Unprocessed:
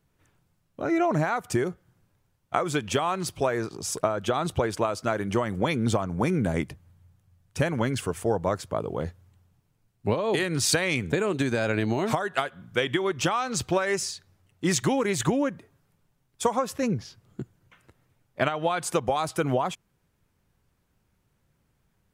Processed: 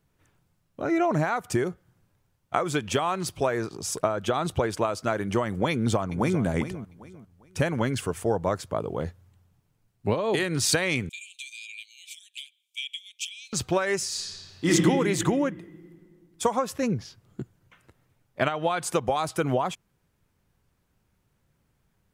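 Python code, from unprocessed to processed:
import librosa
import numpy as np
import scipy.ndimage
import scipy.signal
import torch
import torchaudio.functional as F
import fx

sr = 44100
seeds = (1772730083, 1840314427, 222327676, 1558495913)

y = fx.echo_throw(x, sr, start_s=5.71, length_s=0.73, ms=400, feedback_pct=30, wet_db=-12.0)
y = fx.cheby_ripple_highpass(y, sr, hz=2300.0, ripple_db=6, at=(11.09, 13.53))
y = fx.reverb_throw(y, sr, start_s=14.07, length_s=0.61, rt60_s=2.3, drr_db=-8.5)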